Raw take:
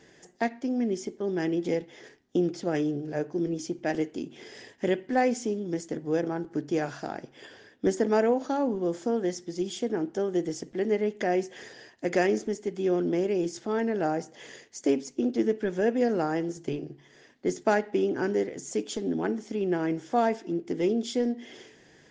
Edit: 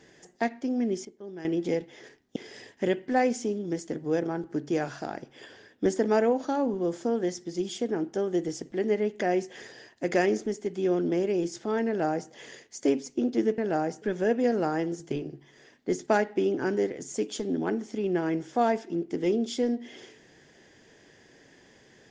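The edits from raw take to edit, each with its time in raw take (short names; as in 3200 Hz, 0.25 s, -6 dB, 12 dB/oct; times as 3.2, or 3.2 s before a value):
1.05–1.45 gain -11.5 dB
2.36–4.37 cut
13.88–14.32 copy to 15.59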